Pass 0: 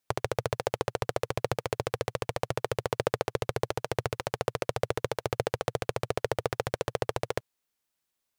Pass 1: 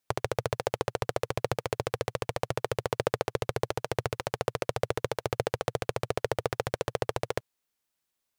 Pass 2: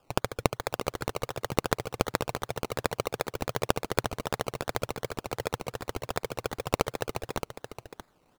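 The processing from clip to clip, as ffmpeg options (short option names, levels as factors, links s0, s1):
-af anull
-filter_complex "[0:a]aexciter=amount=7.7:drive=5.1:freq=4700,acrusher=samples=21:mix=1:aa=0.000001:lfo=1:lforange=12.6:lforate=2.7,asplit=2[s0][s1];[s1]aecho=0:1:622:0.355[s2];[s0][s2]amix=inputs=2:normalize=0,volume=0.631"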